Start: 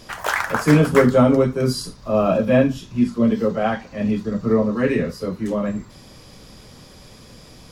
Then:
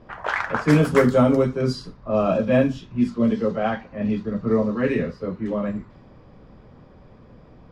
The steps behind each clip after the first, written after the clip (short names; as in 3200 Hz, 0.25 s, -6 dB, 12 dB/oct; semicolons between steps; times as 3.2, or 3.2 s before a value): low-pass opened by the level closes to 1200 Hz, open at -10.5 dBFS; gain -2.5 dB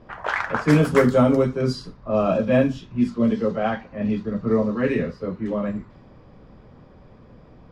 nothing audible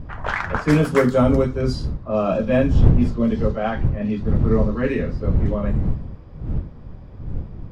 wind noise 100 Hz -22 dBFS